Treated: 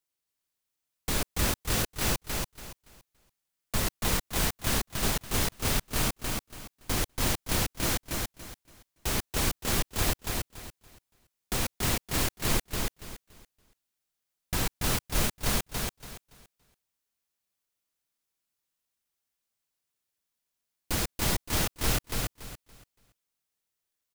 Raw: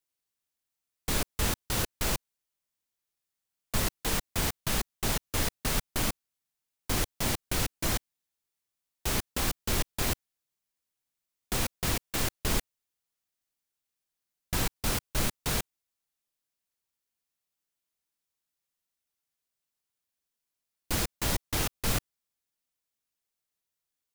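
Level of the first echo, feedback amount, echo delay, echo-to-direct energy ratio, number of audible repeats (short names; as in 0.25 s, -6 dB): -3.0 dB, 25%, 0.284 s, -2.5 dB, 3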